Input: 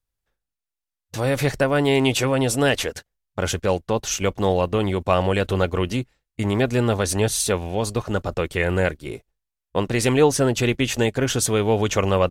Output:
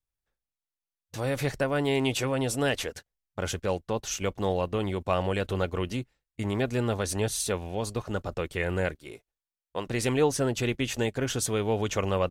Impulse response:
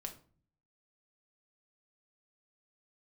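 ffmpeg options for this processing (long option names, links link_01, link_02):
-filter_complex "[0:a]asettb=1/sr,asplit=3[link_01][link_02][link_03];[link_01]atrim=end=8.954[link_04];[link_02]atrim=start=8.95:end=9.86,asetpts=PTS-STARTPTS,afade=type=in:duration=0.004:curve=qsin,afade=type=out:start_time=0.906:duration=0.004:curve=qsin,lowshelf=frequency=320:gain=-9.5[link_05];[link_03]atrim=start=9.856[link_06];[link_04][link_05]acrossfade=duration=0.004:curve1=hsin:curve2=qsin[link_07];[link_07][link_06]acrossfade=duration=0.004:curve1=qsin:curve2=hsin,volume=-7.5dB"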